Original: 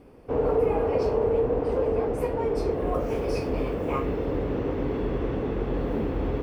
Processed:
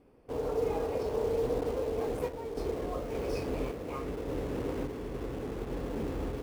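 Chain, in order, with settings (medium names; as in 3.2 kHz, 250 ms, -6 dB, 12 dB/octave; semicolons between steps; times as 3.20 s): hum notches 50/100/150/200 Hz; in parallel at -10.5 dB: bit crusher 5-bit; on the sum: random-step tremolo; trim -8 dB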